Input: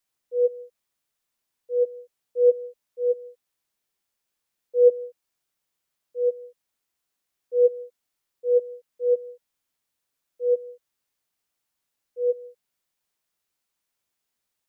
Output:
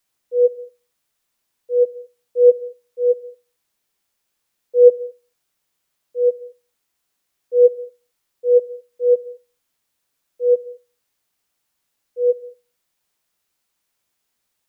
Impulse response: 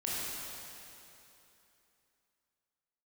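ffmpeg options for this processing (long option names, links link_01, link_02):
-filter_complex "[0:a]asplit=2[link_01][link_02];[1:a]atrim=start_sample=2205,atrim=end_sample=6615,adelay=69[link_03];[link_02][link_03]afir=irnorm=-1:irlink=0,volume=-21.5dB[link_04];[link_01][link_04]amix=inputs=2:normalize=0,volume=6.5dB"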